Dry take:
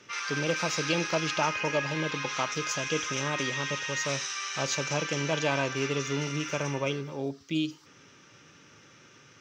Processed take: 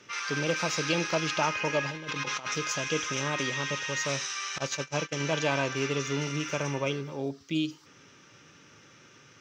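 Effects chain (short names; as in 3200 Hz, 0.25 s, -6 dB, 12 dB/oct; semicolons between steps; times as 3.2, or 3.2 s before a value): 1.9–2.56 negative-ratio compressor -34 dBFS, ratio -0.5; 4.58–5.2 gate -29 dBFS, range -22 dB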